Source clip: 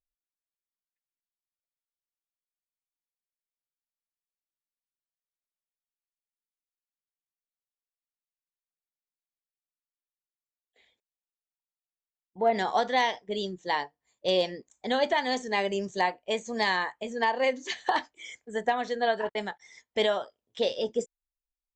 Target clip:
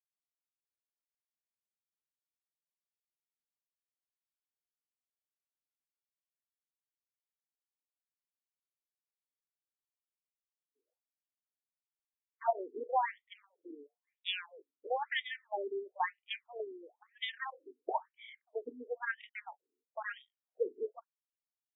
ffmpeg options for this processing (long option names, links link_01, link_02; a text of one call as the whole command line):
ffmpeg -i in.wav -af "aeval=exprs='0.2*(cos(1*acos(clip(val(0)/0.2,-1,1)))-cos(1*PI/2))+0.0355*(cos(3*acos(clip(val(0)/0.2,-1,1)))-cos(3*PI/2))+0.00316*(cos(7*acos(clip(val(0)/0.2,-1,1)))-cos(7*PI/2))':channel_layout=same,afftfilt=real='re*between(b*sr/1024,310*pow(2700/310,0.5+0.5*sin(2*PI*1*pts/sr))/1.41,310*pow(2700/310,0.5+0.5*sin(2*PI*1*pts/sr))*1.41)':imag='im*between(b*sr/1024,310*pow(2700/310,0.5+0.5*sin(2*PI*1*pts/sr))/1.41,310*pow(2700/310,0.5+0.5*sin(2*PI*1*pts/sr))*1.41)':win_size=1024:overlap=0.75" out.wav